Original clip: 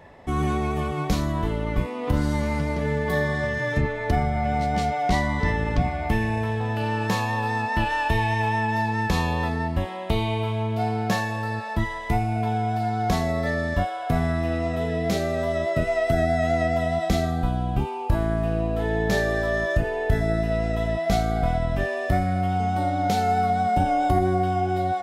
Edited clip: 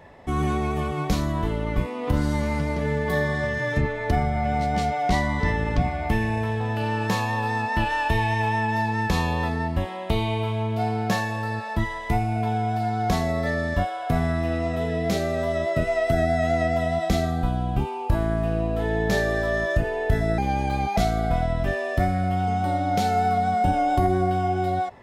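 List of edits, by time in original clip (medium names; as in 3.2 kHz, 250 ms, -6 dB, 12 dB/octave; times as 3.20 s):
20.38–21.09 s: speed 121%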